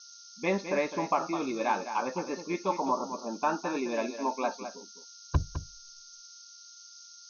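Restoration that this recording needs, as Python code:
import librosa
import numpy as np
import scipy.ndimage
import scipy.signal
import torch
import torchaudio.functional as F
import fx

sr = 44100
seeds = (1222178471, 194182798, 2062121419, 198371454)

y = fx.notch(x, sr, hz=1400.0, q=30.0)
y = fx.noise_reduce(y, sr, print_start_s=6.45, print_end_s=6.95, reduce_db=25.0)
y = fx.fix_echo_inverse(y, sr, delay_ms=208, level_db=-10.0)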